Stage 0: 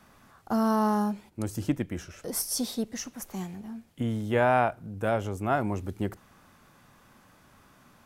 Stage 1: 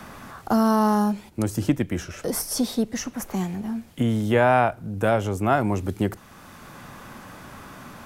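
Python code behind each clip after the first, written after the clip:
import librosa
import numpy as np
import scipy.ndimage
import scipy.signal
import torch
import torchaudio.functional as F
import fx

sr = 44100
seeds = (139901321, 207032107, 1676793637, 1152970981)

y = fx.band_squash(x, sr, depth_pct=40)
y = y * 10.0 ** (6.5 / 20.0)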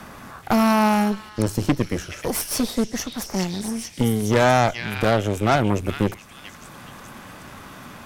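y = fx.echo_stepped(x, sr, ms=427, hz=2700.0, octaves=0.7, feedback_pct=70, wet_db=-1)
y = fx.cheby_harmonics(y, sr, harmonics=(8,), levels_db=(-17,), full_scale_db=-6.5)
y = y * 10.0 ** (1.0 / 20.0)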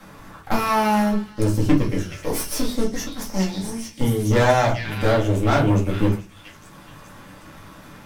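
y = fx.law_mismatch(x, sr, coded='A')
y = fx.room_shoebox(y, sr, seeds[0], volume_m3=120.0, walls='furnished', distance_m=2.2)
y = y * 10.0 ** (-5.5 / 20.0)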